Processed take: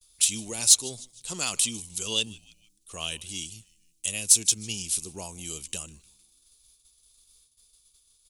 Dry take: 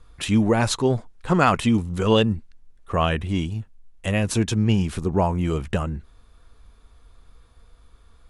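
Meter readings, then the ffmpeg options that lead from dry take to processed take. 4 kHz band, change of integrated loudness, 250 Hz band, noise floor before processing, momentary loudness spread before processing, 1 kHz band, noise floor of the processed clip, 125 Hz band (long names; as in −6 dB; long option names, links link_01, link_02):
+2.5 dB, −2.5 dB, −20.5 dB, −53 dBFS, 10 LU, −20.5 dB, −66 dBFS, −21.5 dB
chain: -filter_complex "[0:a]equalizer=frequency=1000:width=0.36:gain=-8,agate=range=-33dB:threshold=-45dB:ratio=3:detection=peak,bass=frequency=250:gain=-9,treble=frequency=4000:gain=10,asplit=4[link_01][link_02][link_03][link_04];[link_02]adelay=153,afreqshift=-140,volume=-23.5dB[link_05];[link_03]adelay=306,afreqshift=-280,volume=-30.2dB[link_06];[link_04]adelay=459,afreqshift=-420,volume=-37dB[link_07];[link_01][link_05][link_06][link_07]amix=inputs=4:normalize=0,acrossover=split=390[link_08][link_09];[link_09]aexciter=amount=5.5:drive=6.5:freq=2500[link_10];[link_08][link_10]amix=inputs=2:normalize=0,volume=-12.5dB"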